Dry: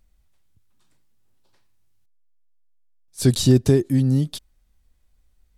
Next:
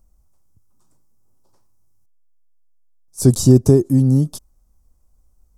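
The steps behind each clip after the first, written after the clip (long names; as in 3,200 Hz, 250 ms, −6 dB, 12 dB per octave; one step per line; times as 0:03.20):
flat-topped bell 2,600 Hz −15.5 dB
level +4.5 dB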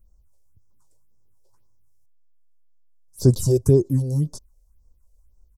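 comb filter 2 ms, depth 35%
all-pass phaser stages 4, 1.9 Hz, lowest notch 190–3,000 Hz
level −3.5 dB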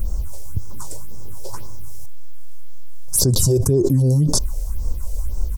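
envelope flattener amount 100%
level −4.5 dB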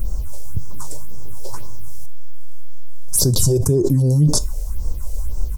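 tuned comb filter 150 Hz, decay 0.25 s, harmonics all, mix 50%
level +5 dB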